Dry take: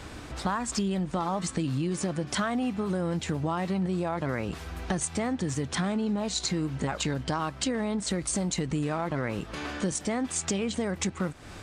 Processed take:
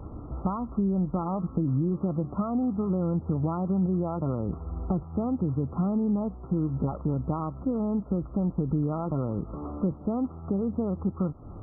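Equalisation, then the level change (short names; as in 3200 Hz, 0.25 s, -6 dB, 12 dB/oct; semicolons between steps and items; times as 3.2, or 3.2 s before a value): brick-wall FIR low-pass 1400 Hz; low shelf 430 Hz +10 dB; -5.0 dB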